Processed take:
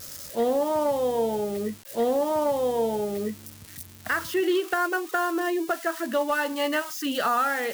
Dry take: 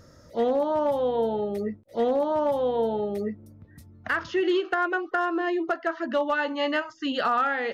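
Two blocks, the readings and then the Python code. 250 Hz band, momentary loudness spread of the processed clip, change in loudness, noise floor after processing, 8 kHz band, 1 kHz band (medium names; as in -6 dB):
0.0 dB, 8 LU, 0.0 dB, -46 dBFS, no reading, 0.0 dB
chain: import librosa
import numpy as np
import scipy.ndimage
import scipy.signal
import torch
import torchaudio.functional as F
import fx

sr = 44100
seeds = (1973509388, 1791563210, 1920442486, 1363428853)

y = x + 0.5 * 10.0 ** (-28.5 / 20.0) * np.diff(np.sign(x), prepend=np.sign(x[:1]))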